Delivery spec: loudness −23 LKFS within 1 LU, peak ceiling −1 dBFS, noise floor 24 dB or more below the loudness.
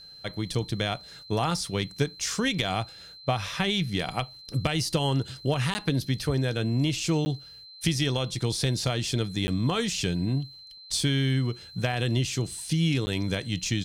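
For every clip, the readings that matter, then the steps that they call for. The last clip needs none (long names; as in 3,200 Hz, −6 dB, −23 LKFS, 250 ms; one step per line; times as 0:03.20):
number of dropouts 4; longest dropout 10 ms; interfering tone 4,100 Hz; level of the tone −45 dBFS; integrated loudness −28.0 LKFS; sample peak −10.5 dBFS; target loudness −23.0 LKFS
→ repair the gap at 0:05.74/0:07.25/0:09.47/0:13.06, 10 ms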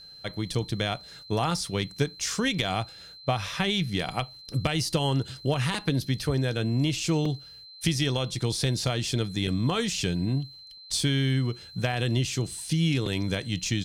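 number of dropouts 0; interfering tone 4,100 Hz; level of the tone −45 dBFS
→ notch filter 4,100 Hz, Q 30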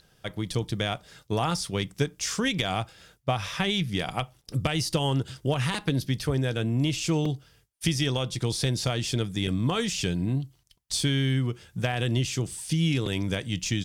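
interfering tone none found; integrated loudness −28.0 LKFS; sample peak −10.5 dBFS; target loudness −23.0 LKFS
→ level +5 dB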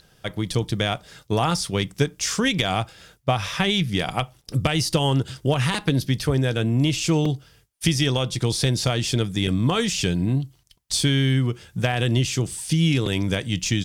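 integrated loudness −23.0 LKFS; sample peak −5.5 dBFS; background noise floor −59 dBFS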